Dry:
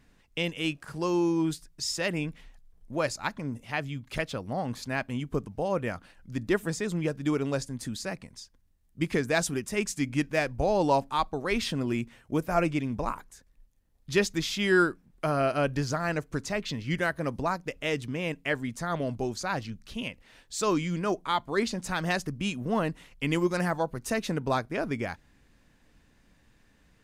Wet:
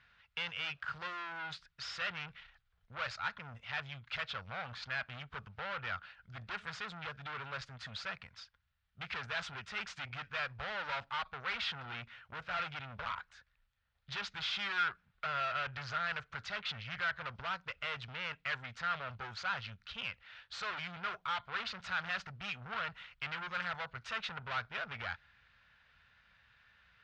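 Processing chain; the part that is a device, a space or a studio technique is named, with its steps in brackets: scooped metal amplifier (valve stage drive 36 dB, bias 0.55; cabinet simulation 89–3700 Hz, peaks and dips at 160 Hz -3 dB, 320 Hz -5 dB, 1.4 kHz +10 dB; amplifier tone stack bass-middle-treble 10-0-10); trim +8.5 dB

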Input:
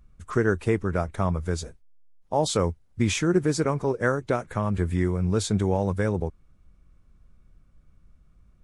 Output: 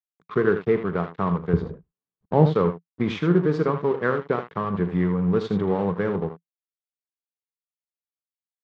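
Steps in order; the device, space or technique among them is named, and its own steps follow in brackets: 1.53–2.55 s: tilt EQ -4 dB/octave; early reflections 40 ms -12.5 dB, 79 ms -9 dB; blown loudspeaker (crossover distortion -35 dBFS; cabinet simulation 140–3600 Hz, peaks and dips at 170 Hz +9 dB, 430 Hz +7 dB, 620 Hz -4 dB, 1.1 kHz +6 dB, 2.5 kHz -4 dB)

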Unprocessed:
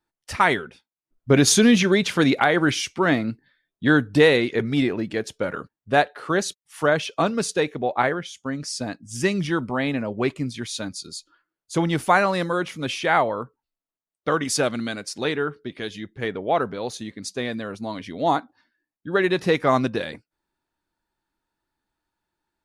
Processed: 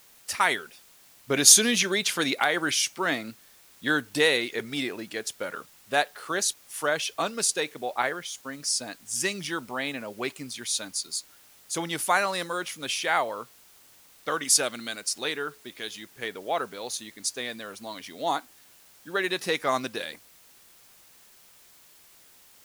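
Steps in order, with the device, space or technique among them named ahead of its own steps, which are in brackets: turntable without a phono preamp (RIAA curve recording; white noise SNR 26 dB); trim -5.5 dB

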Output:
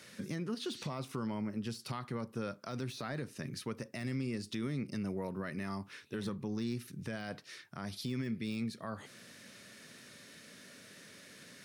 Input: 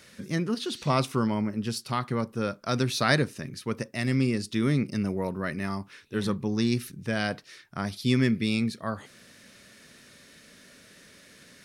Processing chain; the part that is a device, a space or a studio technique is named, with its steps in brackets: podcast mastering chain (high-pass 90 Hz 24 dB/octave; de-esser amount 85%; compression 3:1, threshold -34 dBFS, peak gain reduction 11 dB; peak limiter -27 dBFS, peak gain reduction 8 dB; trim -1 dB; MP3 128 kbps 48 kHz)

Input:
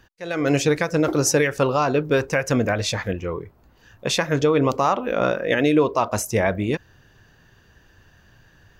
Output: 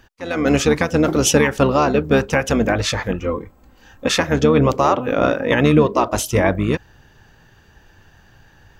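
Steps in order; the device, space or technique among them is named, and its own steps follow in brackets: 3.20–4.10 s: comb 3.8 ms, depth 68%; octave pedal (harmony voices -12 st -6 dB); trim +3 dB

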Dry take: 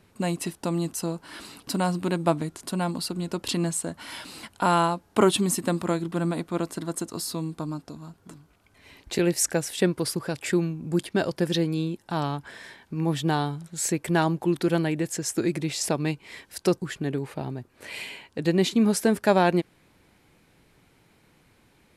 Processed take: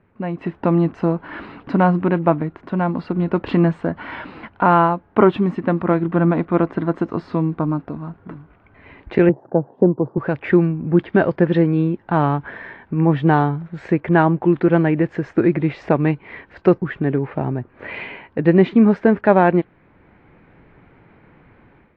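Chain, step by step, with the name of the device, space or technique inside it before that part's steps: 9.29–10.18 s: elliptic band-pass 120–910 Hz, stop band 40 dB; action camera in a waterproof case (low-pass 2.1 kHz 24 dB/octave; level rider gain up to 11.5 dB; AAC 48 kbps 24 kHz)

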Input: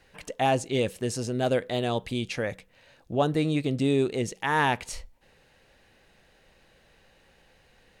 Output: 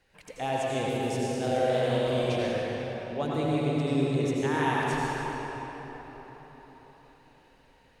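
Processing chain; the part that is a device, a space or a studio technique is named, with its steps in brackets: 1.42–2.35 s: flutter echo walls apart 8 m, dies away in 0.89 s; cathedral (reverberation RT60 4.7 s, pre-delay 76 ms, DRR -5.5 dB); trim -8.5 dB

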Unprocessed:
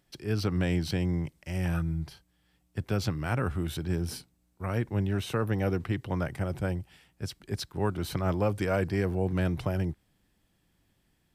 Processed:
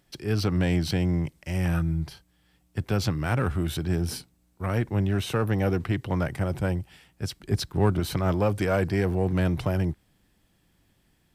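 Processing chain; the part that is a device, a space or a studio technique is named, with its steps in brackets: 7.43–8.00 s: bass shelf 420 Hz +6 dB; parallel distortion (in parallel at -5.5 dB: hard clipper -27 dBFS, distortion -9 dB); on the sum: trim +1 dB

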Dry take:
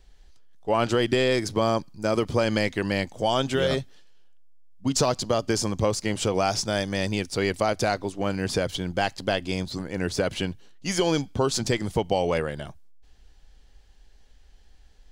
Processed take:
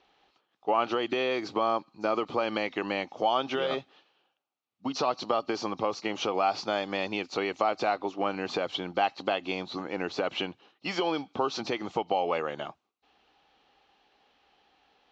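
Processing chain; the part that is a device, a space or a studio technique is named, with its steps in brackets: hearing aid with frequency lowering (knee-point frequency compression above 3.7 kHz 1.5:1; compression 4:1, threshold -26 dBFS, peak gain reduction 7.5 dB; cabinet simulation 290–5300 Hz, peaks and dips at 310 Hz +3 dB, 800 Hz +8 dB, 1.2 kHz +9 dB, 1.7 kHz -4 dB, 2.6 kHz +5 dB, 5 kHz -6 dB)

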